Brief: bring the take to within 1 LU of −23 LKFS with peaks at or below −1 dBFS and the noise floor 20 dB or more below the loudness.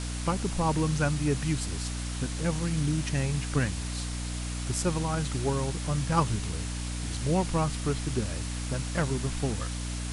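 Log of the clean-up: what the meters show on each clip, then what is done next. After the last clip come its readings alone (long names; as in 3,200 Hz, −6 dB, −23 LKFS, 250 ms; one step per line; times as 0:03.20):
mains hum 60 Hz; hum harmonics up to 300 Hz; level of the hum −32 dBFS; background noise floor −34 dBFS; target noise floor −50 dBFS; integrated loudness −30.0 LKFS; sample peak −12.0 dBFS; target loudness −23.0 LKFS
→ hum removal 60 Hz, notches 5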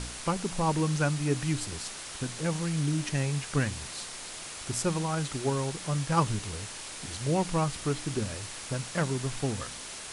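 mains hum none found; background noise floor −42 dBFS; target noise floor −51 dBFS
→ noise reduction from a noise print 9 dB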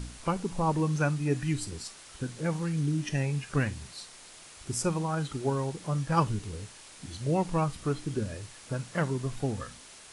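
background noise floor −50 dBFS; target noise floor −51 dBFS
→ noise reduction from a noise print 6 dB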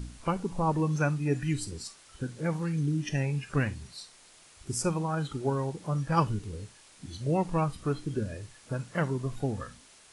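background noise floor −56 dBFS; integrated loudness −31.0 LKFS; sample peak −12.5 dBFS; target loudness −23.0 LKFS
→ level +8 dB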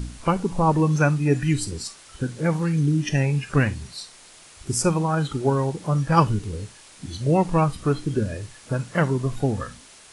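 integrated loudness −23.0 LKFS; sample peak −4.5 dBFS; background noise floor −48 dBFS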